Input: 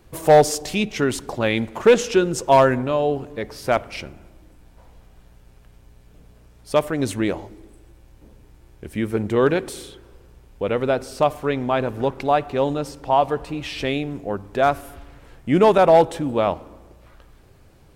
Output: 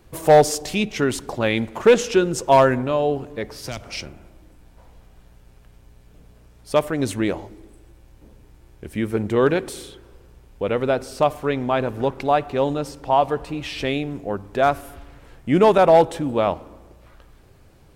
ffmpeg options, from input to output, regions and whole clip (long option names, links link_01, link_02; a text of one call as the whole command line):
ffmpeg -i in.wav -filter_complex "[0:a]asettb=1/sr,asplit=3[link_01][link_02][link_03];[link_01]atrim=end=3.634[link_04];[link_02]atrim=start=3.63:end=4.06,asetpts=PTS-STARTPTS,afade=type=in:duration=0.004:curve=qsin,afade=type=out:start_time=0.426:duration=0.004:curve=qsin,equalizer=frequency=5600:width=1.4:gain=8,acrossover=split=190|3000[link_05][link_06][link_07];[link_06]acompressor=threshold=-32dB:ratio=6:attack=3.2:release=140:knee=2.83:detection=peak[link_08];[link_05][link_08][link_07]amix=inputs=3:normalize=0[link_09];[link_03]atrim=start=4.056[link_10];[link_04][link_09]acrossfade=duration=0.004:curve1=hsin:curve2=qsin[link_11];[link_11][link_10]acrossfade=duration=0.004:curve1=qsin:curve2=hsin" out.wav